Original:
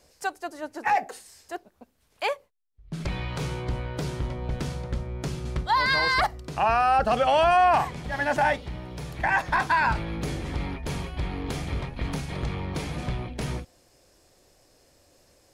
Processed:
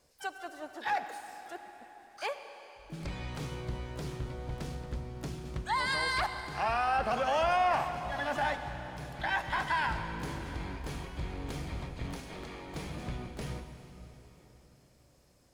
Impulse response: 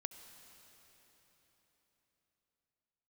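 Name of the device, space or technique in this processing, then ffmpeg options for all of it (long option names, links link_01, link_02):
shimmer-style reverb: -filter_complex "[0:a]asplit=3[link_01][link_02][link_03];[link_01]afade=type=out:start_time=12.14:duration=0.02[link_04];[link_02]highpass=frequency=220:width=0.5412,highpass=frequency=220:width=1.3066,afade=type=in:start_time=12.14:duration=0.02,afade=type=out:start_time=12.74:duration=0.02[link_05];[link_03]afade=type=in:start_time=12.74:duration=0.02[link_06];[link_04][link_05][link_06]amix=inputs=3:normalize=0,asplit=2[link_07][link_08];[link_08]asetrate=88200,aresample=44100,atempo=0.5,volume=-11dB[link_09];[link_07][link_09]amix=inputs=2:normalize=0[link_10];[1:a]atrim=start_sample=2205[link_11];[link_10][link_11]afir=irnorm=-1:irlink=0,volume=-5.5dB"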